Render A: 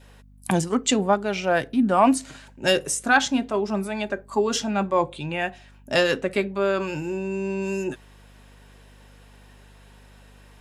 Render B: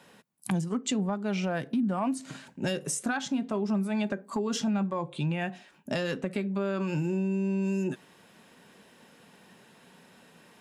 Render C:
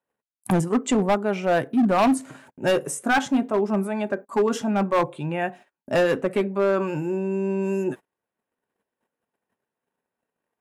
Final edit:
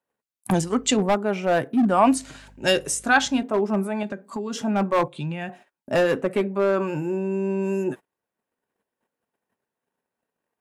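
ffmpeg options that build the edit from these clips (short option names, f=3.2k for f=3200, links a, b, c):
-filter_complex "[0:a]asplit=2[a][b];[1:a]asplit=2[c][d];[2:a]asplit=5[e][f][g][h][i];[e]atrim=end=0.542[j];[a]atrim=start=0.538:end=0.972[k];[f]atrim=start=0.968:end=1.902[l];[b]atrim=start=1.898:end=3.432[m];[g]atrim=start=3.428:end=4.032[n];[c]atrim=start=4.028:end=4.582[o];[h]atrim=start=4.578:end=5.082[p];[d]atrim=start=5.078:end=5.492[q];[i]atrim=start=5.488[r];[j][k]acrossfade=d=0.004:c1=hsin:c2=hsin[s];[s][l]acrossfade=d=0.004:c1=hsin:c2=hsin[t];[t][m]acrossfade=d=0.004:c1=hsin:c2=hsin[u];[u][n]acrossfade=d=0.004:c1=hsin:c2=hsin[v];[v][o]acrossfade=d=0.004:c1=hsin:c2=hsin[w];[w][p]acrossfade=d=0.004:c1=hsin:c2=hsin[x];[x][q]acrossfade=d=0.004:c1=hsin:c2=hsin[y];[y][r]acrossfade=d=0.004:c1=hsin:c2=hsin"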